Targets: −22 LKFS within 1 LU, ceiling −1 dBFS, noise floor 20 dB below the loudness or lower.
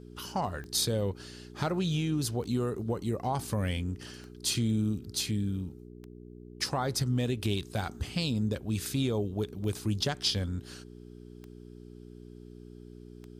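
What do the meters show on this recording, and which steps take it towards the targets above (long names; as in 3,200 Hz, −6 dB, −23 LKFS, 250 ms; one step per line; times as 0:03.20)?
number of clicks 8; mains hum 60 Hz; hum harmonics up to 420 Hz; level of the hum −46 dBFS; integrated loudness −31.5 LKFS; sample peak −15.0 dBFS; target loudness −22.0 LKFS
→ click removal
hum removal 60 Hz, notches 7
level +9.5 dB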